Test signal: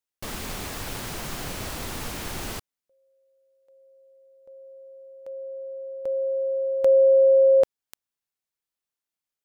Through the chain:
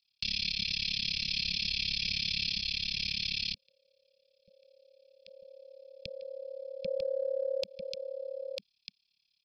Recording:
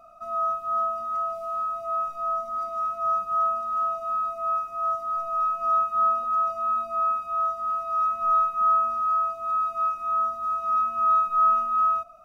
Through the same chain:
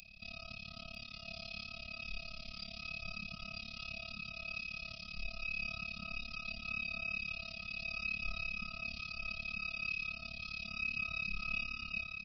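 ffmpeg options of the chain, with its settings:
ffmpeg -i in.wav -filter_complex "[0:a]acrossover=split=220|980[link_01][link_02][link_03];[link_01]alimiter=level_in=14.5dB:limit=-24dB:level=0:latency=1,volume=-14.5dB[link_04];[link_04][link_02][link_03]amix=inputs=3:normalize=0,aecho=1:1:1.2:0.53,aresample=11025,aresample=44100,firequalizer=gain_entry='entry(140,0);entry(200,8);entry(280,-28);entry(410,-3);entry(690,-26);entry(1400,-27);entry(2300,14)':delay=0.05:min_phase=1,tremolo=f=35:d=0.974,bass=frequency=250:gain=5,treble=frequency=4000:gain=15,aecho=1:1:946:0.501,acompressor=threshold=-28dB:ratio=6:attack=0.75:release=119:knee=1:detection=rms,volume=2dB" out.wav

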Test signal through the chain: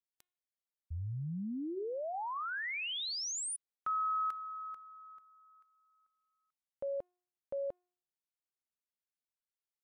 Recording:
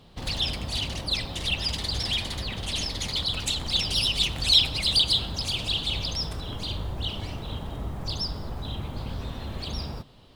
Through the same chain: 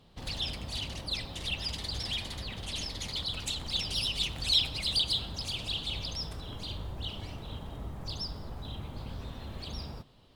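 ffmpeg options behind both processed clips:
ffmpeg -i in.wav -af "bandreject=frequency=358.5:width_type=h:width=4,bandreject=frequency=717:width_type=h:width=4,bandreject=frequency=1075.5:width_type=h:width=4,bandreject=frequency=1434:width_type=h:width=4,bandreject=frequency=1792.5:width_type=h:width=4,bandreject=frequency=2151:width_type=h:width=4,bandreject=frequency=2509.5:width_type=h:width=4,bandreject=frequency=2868:width_type=h:width=4,bandreject=frequency=3226.5:width_type=h:width=4,bandreject=frequency=3585:width_type=h:width=4,bandreject=frequency=3943.5:width_type=h:width=4,volume=-6.5dB" -ar 48000 -c:a libmp3lame -b:a 112k out.mp3

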